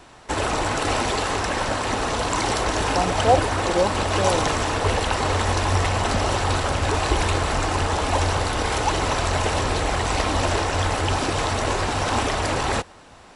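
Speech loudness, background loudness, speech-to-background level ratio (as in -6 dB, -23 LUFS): -25.0 LUFS, -22.5 LUFS, -2.5 dB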